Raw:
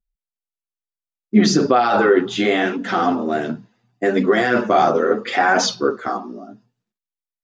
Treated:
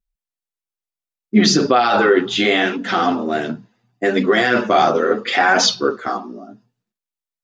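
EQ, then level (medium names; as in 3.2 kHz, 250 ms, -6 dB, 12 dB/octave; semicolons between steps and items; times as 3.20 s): dynamic bell 3.5 kHz, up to +7 dB, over -36 dBFS, Q 0.71; 0.0 dB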